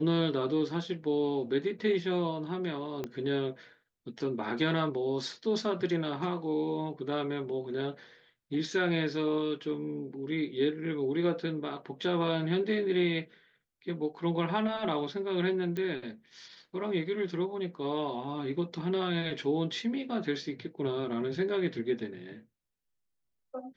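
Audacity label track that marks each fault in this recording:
3.040000	3.040000	pop -22 dBFS
15.770000	15.770000	pop -23 dBFS

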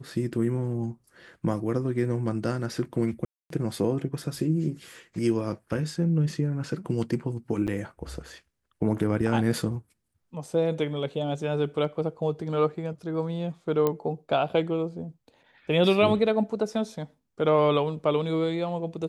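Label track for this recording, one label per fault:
3.250000	3.500000	dropout 253 ms
7.670000	7.680000	dropout 8.2 ms
13.870000	13.870000	pop -13 dBFS

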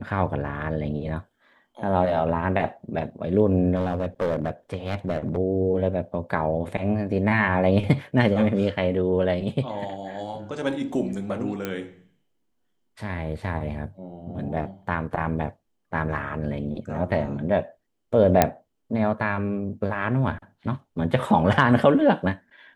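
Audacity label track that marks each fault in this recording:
3.750000	5.370000	clipped -19.5 dBFS
11.650000	11.650000	pop -14 dBFS
18.420000	18.420000	pop -2 dBFS

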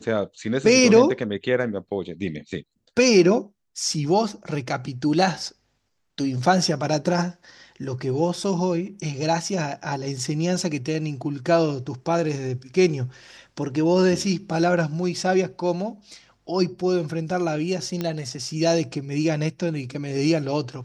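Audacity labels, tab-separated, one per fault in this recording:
18.010000	18.010000	pop -13 dBFS

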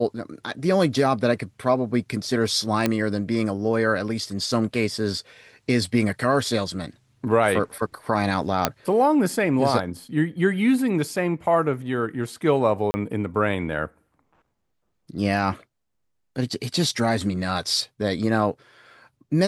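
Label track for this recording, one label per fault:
2.860000	2.860000	pop -7 dBFS
8.650000	8.650000	pop -2 dBFS
12.910000	12.940000	dropout 30 ms

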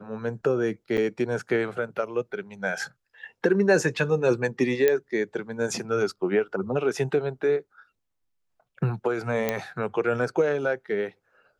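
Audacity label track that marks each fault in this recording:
0.970000	0.980000	dropout 8.1 ms
4.880000	4.880000	pop -9 dBFS
9.490000	9.490000	pop -10 dBFS

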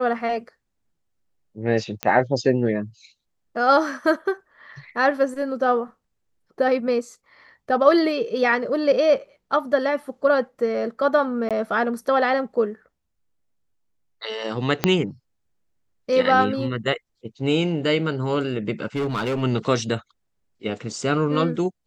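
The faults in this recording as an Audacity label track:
2.030000	2.030000	pop -9 dBFS
11.490000	11.510000	dropout 17 ms
14.840000	14.840000	pop -3 dBFS
18.960000	19.430000	clipped -20.5 dBFS

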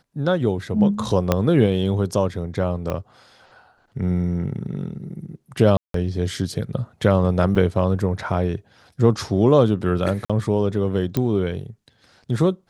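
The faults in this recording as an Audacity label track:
1.320000	1.320000	pop -4 dBFS
2.900000	2.900000	pop -13 dBFS
5.770000	5.940000	dropout 173 ms
7.550000	7.550000	dropout 4.8 ms
10.250000	10.300000	dropout 46 ms
11.170000	11.170000	pop -9 dBFS

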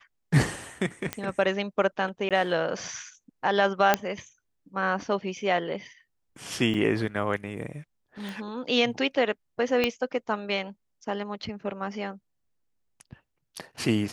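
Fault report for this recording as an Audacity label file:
1.130000	1.130000	pop -13 dBFS
2.290000	2.310000	dropout 17 ms
3.940000	3.940000	pop -5 dBFS
6.740000	6.740000	dropout 4.8 ms
8.290000	8.290000	pop
9.840000	9.840000	pop -10 dBFS

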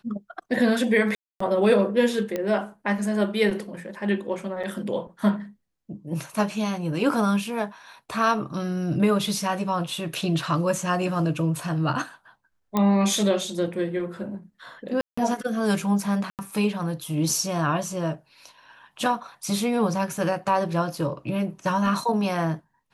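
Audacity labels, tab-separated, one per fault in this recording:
1.150000	1.400000	dropout 254 ms
2.360000	2.360000	pop -14 dBFS
4.630000	4.640000	dropout 5.9 ms
12.770000	12.770000	pop -10 dBFS
15.010000	15.180000	dropout 165 ms
16.300000	16.390000	dropout 88 ms

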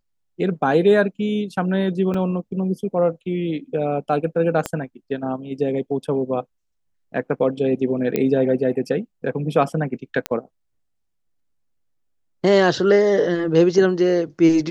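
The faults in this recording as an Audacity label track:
2.140000	2.140000	dropout 3.8 ms
4.660000	4.660000	pop -9 dBFS
8.160000	8.160000	pop -8 dBFS
10.260000	10.260000	pop -8 dBFS

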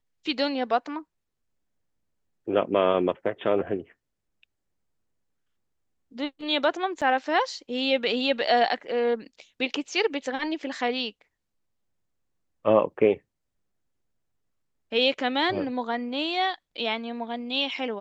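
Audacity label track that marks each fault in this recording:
7.010000	7.020000	dropout 6.8 ms

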